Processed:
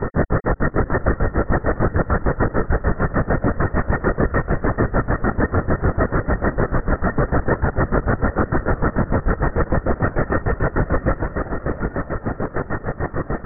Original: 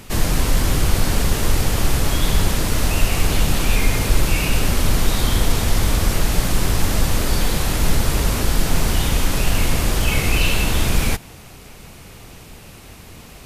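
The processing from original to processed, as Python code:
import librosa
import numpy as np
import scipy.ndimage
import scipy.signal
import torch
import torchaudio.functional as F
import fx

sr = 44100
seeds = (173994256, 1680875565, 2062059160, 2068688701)

p1 = fx.granulator(x, sr, seeds[0], grain_ms=96.0, per_s=6.7, spray_ms=21.0, spread_st=0)
p2 = fx.fold_sine(p1, sr, drive_db=18, ceiling_db=-2.0)
p3 = fx.over_compress(p2, sr, threshold_db=-22.0, ratio=-1.0)
p4 = p2 + (p3 * librosa.db_to_amplitude(-0.5))
p5 = scipy.signal.sosfilt(scipy.signal.cheby1(6, 6, 1900.0, 'lowpass', fs=sr, output='sos'), p4)
p6 = p5 + fx.echo_diffused(p5, sr, ms=710, feedback_pct=42, wet_db=-14.5, dry=0)
p7 = fx.lpc_vocoder(p6, sr, seeds[1], excitation='whisper', order=16)
y = p7 * librosa.db_to_amplitude(-5.5)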